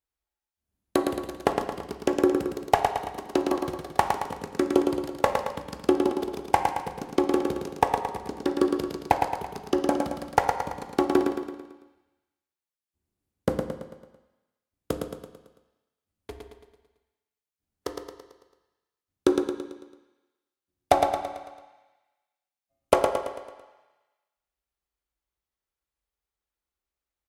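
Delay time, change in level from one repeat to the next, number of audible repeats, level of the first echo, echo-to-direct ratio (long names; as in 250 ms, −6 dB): 111 ms, −6.0 dB, 5, −5.0 dB, −4.0 dB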